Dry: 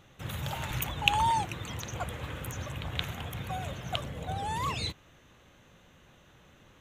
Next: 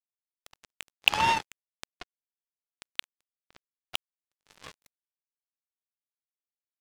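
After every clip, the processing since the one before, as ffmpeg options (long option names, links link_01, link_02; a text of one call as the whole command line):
ffmpeg -i in.wav -filter_complex "[0:a]acrossover=split=200 4600:gain=0.178 1 0.2[link_01][link_02][link_03];[link_01][link_02][link_03]amix=inputs=3:normalize=0,acrusher=bits=3:mix=0:aa=0.5,volume=3.5dB" out.wav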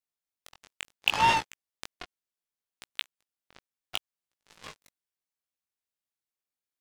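ffmpeg -i in.wav -filter_complex "[0:a]asplit=2[link_01][link_02];[link_02]alimiter=limit=-12.5dB:level=0:latency=1:release=224,volume=2.5dB[link_03];[link_01][link_03]amix=inputs=2:normalize=0,flanger=delay=16.5:depth=5.8:speed=0.69,volume=-2.5dB" out.wav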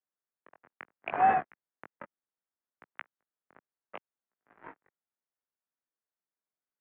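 ffmpeg -i in.wav -af "highpass=frequency=310:width_type=q:width=0.5412,highpass=frequency=310:width_type=q:width=1.307,lowpass=frequency=2000:width_type=q:width=0.5176,lowpass=frequency=2000:width_type=q:width=0.7071,lowpass=frequency=2000:width_type=q:width=1.932,afreqshift=-150" out.wav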